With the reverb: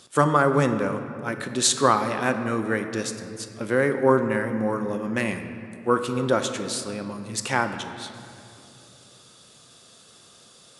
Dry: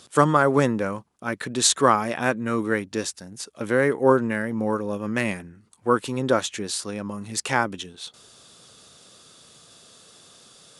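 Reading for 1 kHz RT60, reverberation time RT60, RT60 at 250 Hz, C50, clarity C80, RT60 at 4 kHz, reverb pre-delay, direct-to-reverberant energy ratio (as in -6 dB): 2.4 s, 2.6 s, 3.2 s, 8.5 dB, 9.5 dB, 1.6 s, 6 ms, 7.0 dB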